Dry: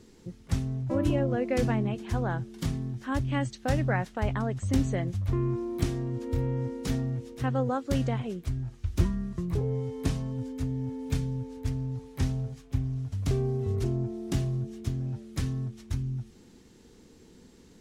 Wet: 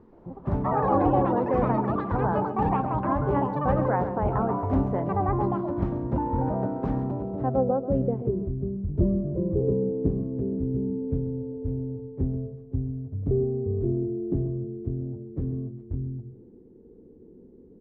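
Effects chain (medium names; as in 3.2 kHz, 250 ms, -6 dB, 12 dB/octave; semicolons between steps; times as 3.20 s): hum notches 60/120 Hz; ever faster or slower copies 125 ms, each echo +7 st, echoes 3; on a send: delay 134 ms -12 dB; on the sum: low-pass sweep 1 kHz -> 420 Hz, 7.05–8.29 s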